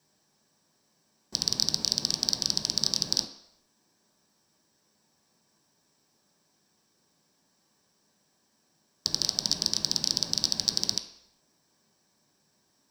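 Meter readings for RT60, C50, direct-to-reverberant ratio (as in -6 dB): no single decay rate, 9.0 dB, 1.5 dB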